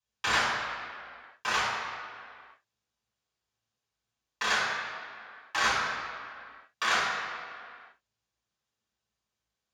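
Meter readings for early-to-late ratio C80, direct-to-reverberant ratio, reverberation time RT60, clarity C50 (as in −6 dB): 1.0 dB, −9.5 dB, non-exponential decay, −0.5 dB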